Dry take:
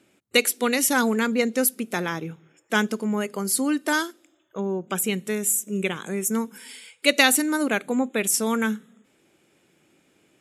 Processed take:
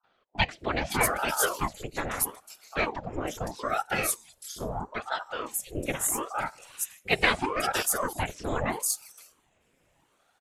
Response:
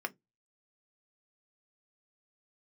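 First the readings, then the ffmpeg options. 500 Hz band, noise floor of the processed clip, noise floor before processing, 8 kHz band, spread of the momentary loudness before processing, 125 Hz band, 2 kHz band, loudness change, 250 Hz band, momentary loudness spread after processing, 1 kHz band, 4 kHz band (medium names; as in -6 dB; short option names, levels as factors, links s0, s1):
-6.5 dB, -70 dBFS, -65 dBFS, -5.5 dB, 11 LU, -1.5 dB, -5.0 dB, -6.0 dB, -13.0 dB, 10 LU, -0.5 dB, -6.5 dB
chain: -filter_complex "[0:a]acrossover=split=190|4100[s0][s1][s2];[s1]adelay=40[s3];[s2]adelay=560[s4];[s0][s3][s4]amix=inputs=3:normalize=0,afftfilt=real='hypot(re,im)*cos(2*PI*random(0))':imag='hypot(re,im)*sin(2*PI*random(1))':win_size=512:overlap=0.75,aeval=exprs='val(0)*sin(2*PI*620*n/s+620*0.8/0.77*sin(2*PI*0.77*n/s))':c=same,volume=1.58"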